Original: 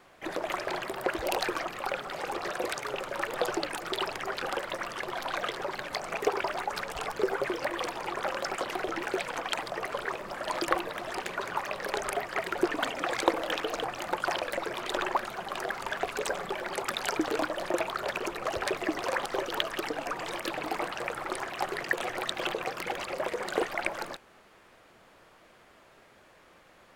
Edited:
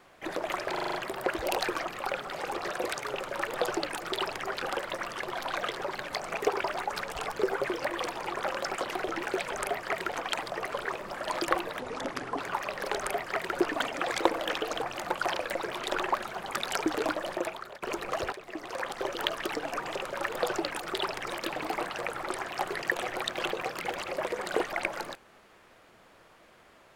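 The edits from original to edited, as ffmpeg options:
ffmpeg -i in.wav -filter_complex "[0:a]asplit=15[link_01][link_02][link_03][link_04][link_05][link_06][link_07][link_08][link_09][link_10][link_11][link_12][link_13][link_14][link_15];[link_01]atrim=end=0.772[link_16];[link_02]atrim=start=0.728:end=0.772[link_17];[link_03]atrim=start=0.728:end=0.772[link_18];[link_04]atrim=start=0.728:end=0.772[link_19];[link_05]atrim=start=0.728:end=0.772[link_20];[link_06]atrim=start=0.728:end=9.322[link_21];[link_07]atrim=start=11.978:end=12.582[link_22];[link_08]atrim=start=9.318:end=11.004[link_23];[link_09]atrim=start=11:end=11.43,asetpts=PTS-STARTPTS,asetrate=31311,aresample=44100,atrim=end_sample=26708,asetpts=PTS-STARTPTS[link_24];[link_10]atrim=start=11.426:end=15.512[link_25];[link_11]atrim=start=16.818:end=18.16,asetpts=PTS-STARTPTS,afade=type=out:start_time=0.732:duration=0.61:silence=0.0944061[link_26];[link_12]atrim=start=18.16:end=18.66,asetpts=PTS-STARTPTS,afade=type=in:duration=0.004:curve=hsin:silence=0.0944061,afade=type=out:start_time=0.496:duration=0.004:curve=hsin:silence=0.149624[link_27];[link_13]atrim=start=18.66:end=20.292,asetpts=PTS-STARTPTS,afade=type=in:duration=0.91:silence=0.149624[link_28];[link_14]atrim=start=2.938:end=4.262[link_29];[link_15]atrim=start=20.288[link_30];[link_16][link_17]acrossfade=duration=0.004:curve1=hsin:curve2=hsin[link_31];[link_31][link_18]acrossfade=duration=0.004:curve1=hsin:curve2=hsin[link_32];[link_32][link_19]acrossfade=duration=0.004:curve1=hsin:curve2=hsin[link_33];[link_33][link_20]acrossfade=duration=0.004:curve1=hsin:curve2=hsin[link_34];[link_34][link_21]acrossfade=duration=0.004:curve1=hsin:curve2=hsin[link_35];[link_35][link_22]acrossfade=duration=0.004:curve1=hsin:curve2=hsin[link_36];[link_36][link_23]acrossfade=duration=0.004:curve1=hsin:curve2=hsin[link_37];[link_37][link_24]acrossfade=duration=0.004:curve1=hsin:curve2=hsin[link_38];[link_38][link_25]acrossfade=duration=0.004:curve1=hsin:curve2=hsin[link_39];[link_26][link_27][link_28]concat=n=3:v=0:a=1[link_40];[link_39][link_40]acrossfade=duration=0.004:curve1=hsin:curve2=hsin[link_41];[link_41][link_29]acrossfade=duration=0.004:curve1=hsin:curve2=hsin[link_42];[link_42][link_30]acrossfade=duration=0.004:curve1=hsin:curve2=hsin" out.wav

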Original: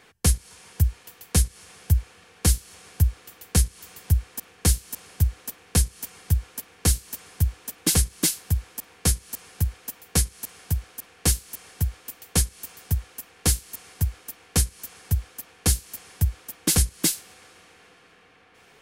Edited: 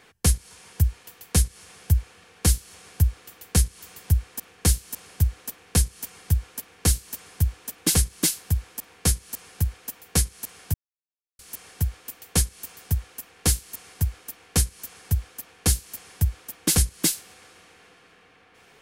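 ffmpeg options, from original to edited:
ffmpeg -i in.wav -filter_complex "[0:a]asplit=3[link_01][link_02][link_03];[link_01]atrim=end=10.74,asetpts=PTS-STARTPTS,afade=type=out:start_time=10.736:duration=0.004:curve=hsin[link_04];[link_02]atrim=start=10.74:end=11.39,asetpts=PTS-STARTPTS,volume=0[link_05];[link_03]atrim=start=11.39,asetpts=PTS-STARTPTS,afade=type=in:duration=0.004:curve=hsin[link_06];[link_04][link_05][link_06]concat=n=3:v=0:a=1" out.wav

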